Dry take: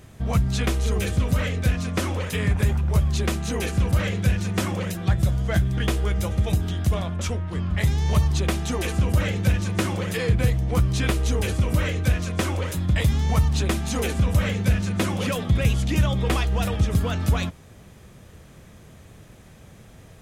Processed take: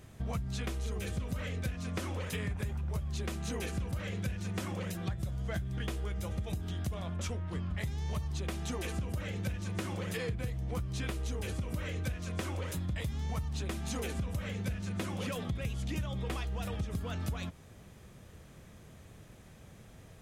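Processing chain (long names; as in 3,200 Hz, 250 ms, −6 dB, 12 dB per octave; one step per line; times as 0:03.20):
downward compressor, threshold −26 dBFS, peak gain reduction 12 dB
level −6.5 dB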